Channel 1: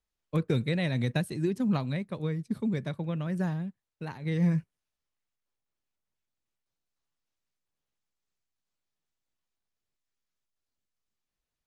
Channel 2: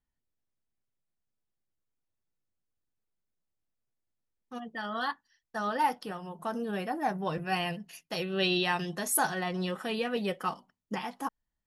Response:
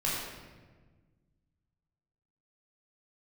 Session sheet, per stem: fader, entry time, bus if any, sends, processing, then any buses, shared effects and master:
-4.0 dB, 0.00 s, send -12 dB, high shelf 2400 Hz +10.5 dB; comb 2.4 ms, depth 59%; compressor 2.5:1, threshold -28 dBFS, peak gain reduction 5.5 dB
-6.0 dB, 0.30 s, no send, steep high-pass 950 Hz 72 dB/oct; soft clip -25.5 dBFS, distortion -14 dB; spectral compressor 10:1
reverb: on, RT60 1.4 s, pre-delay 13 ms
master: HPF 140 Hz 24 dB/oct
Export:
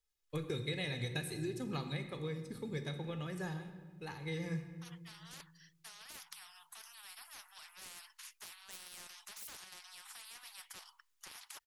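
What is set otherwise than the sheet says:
stem 1 -4.0 dB -> -10.5 dB; master: missing HPF 140 Hz 24 dB/oct

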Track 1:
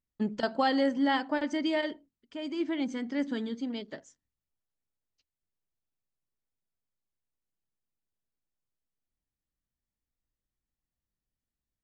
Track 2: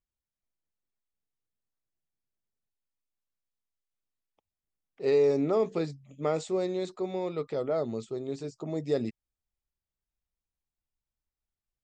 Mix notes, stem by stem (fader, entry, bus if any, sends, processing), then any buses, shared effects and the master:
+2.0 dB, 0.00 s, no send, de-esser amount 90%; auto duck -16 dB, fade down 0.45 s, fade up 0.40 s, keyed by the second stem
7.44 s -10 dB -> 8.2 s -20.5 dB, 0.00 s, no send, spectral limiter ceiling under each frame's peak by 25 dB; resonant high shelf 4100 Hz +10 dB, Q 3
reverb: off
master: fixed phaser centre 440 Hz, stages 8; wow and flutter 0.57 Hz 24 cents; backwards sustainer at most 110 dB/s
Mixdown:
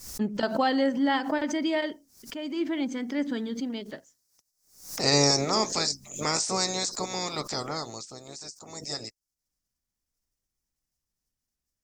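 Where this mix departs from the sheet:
stem 2 -10.0 dB -> 0.0 dB; master: missing fixed phaser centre 440 Hz, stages 8

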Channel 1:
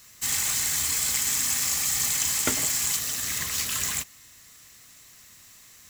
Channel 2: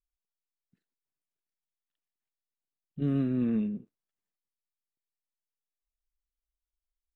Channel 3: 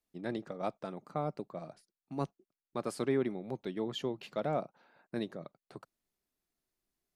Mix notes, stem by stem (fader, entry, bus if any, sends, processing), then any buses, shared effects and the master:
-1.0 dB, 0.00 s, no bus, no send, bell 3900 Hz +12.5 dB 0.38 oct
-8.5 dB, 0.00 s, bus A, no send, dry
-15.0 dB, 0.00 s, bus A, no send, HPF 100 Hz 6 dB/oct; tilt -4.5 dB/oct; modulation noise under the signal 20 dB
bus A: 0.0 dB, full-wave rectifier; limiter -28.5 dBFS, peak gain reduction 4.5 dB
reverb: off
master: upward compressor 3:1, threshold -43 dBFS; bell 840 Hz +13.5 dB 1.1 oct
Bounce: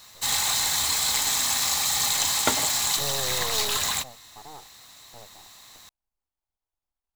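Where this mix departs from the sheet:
stem 2 -8.5 dB -> -1.5 dB; stem 3 -15.0 dB -> -22.0 dB; master: missing upward compressor 3:1, threshold -43 dBFS

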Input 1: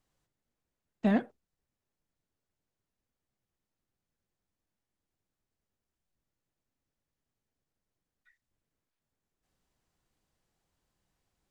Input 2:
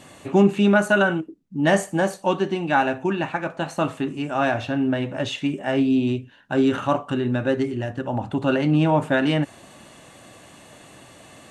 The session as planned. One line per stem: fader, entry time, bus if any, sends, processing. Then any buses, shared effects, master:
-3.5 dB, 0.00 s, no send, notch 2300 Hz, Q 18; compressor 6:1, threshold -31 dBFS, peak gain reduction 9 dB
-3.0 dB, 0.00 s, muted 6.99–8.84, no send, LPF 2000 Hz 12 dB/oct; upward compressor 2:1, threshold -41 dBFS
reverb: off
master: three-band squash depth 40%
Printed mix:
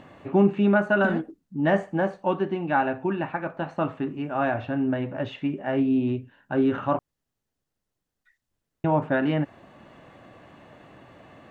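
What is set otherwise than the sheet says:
stem 1 -3.5 dB -> +4.0 dB; master: missing three-band squash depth 40%

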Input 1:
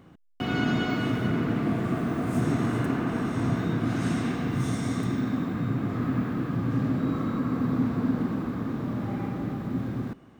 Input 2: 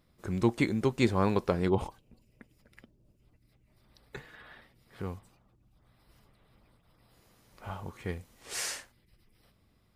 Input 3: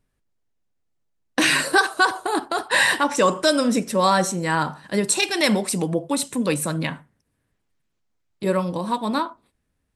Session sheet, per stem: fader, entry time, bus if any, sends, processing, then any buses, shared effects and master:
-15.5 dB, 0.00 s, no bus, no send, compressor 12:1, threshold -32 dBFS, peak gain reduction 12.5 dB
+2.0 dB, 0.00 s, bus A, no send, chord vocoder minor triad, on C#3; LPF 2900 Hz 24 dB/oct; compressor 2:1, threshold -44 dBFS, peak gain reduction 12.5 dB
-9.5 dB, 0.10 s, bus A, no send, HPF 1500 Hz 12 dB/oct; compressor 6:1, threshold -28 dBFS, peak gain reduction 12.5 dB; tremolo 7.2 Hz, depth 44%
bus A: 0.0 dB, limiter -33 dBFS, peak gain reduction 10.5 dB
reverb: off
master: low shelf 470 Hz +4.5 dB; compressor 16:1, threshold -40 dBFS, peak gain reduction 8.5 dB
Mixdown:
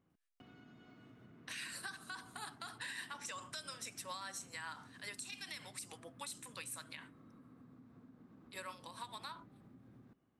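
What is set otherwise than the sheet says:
stem 1 -15.5 dB -> -24.5 dB; stem 2: muted; master: missing low shelf 470 Hz +4.5 dB

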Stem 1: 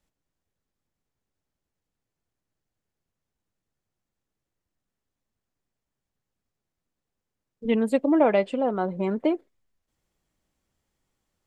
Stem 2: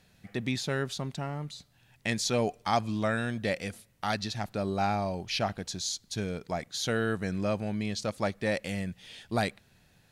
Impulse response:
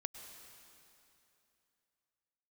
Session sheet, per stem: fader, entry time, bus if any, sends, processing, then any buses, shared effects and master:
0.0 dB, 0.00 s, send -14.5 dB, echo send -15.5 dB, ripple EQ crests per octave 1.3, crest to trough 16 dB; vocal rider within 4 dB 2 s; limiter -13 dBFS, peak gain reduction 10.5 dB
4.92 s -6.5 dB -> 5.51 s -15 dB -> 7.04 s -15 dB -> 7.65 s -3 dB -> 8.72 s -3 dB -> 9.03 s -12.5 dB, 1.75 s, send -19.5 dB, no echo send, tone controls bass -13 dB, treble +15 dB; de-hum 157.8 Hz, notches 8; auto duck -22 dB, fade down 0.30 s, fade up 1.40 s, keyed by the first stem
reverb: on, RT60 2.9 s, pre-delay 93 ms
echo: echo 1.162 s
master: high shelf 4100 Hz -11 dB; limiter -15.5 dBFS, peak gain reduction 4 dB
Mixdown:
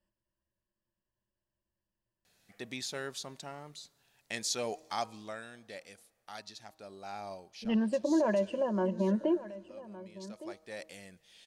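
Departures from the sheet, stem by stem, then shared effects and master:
stem 1 0.0 dB -> -8.5 dB; stem 2: entry 1.75 s -> 2.25 s

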